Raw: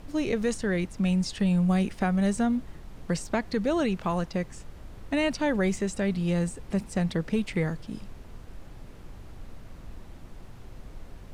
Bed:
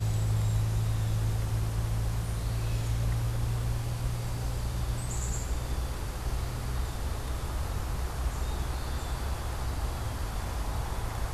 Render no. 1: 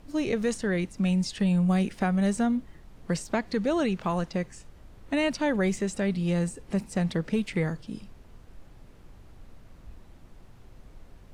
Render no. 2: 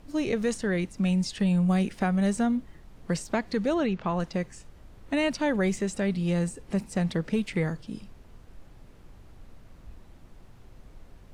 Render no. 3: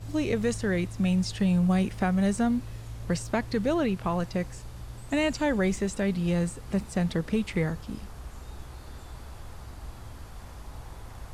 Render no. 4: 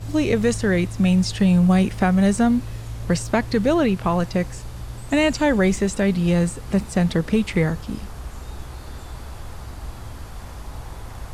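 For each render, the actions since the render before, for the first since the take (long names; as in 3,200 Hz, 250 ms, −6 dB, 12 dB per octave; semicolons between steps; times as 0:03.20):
noise reduction from a noise print 6 dB
0:03.74–0:04.20: high-frequency loss of the air 120 metres
mix in bed −10.5 dB
level +7.5 dB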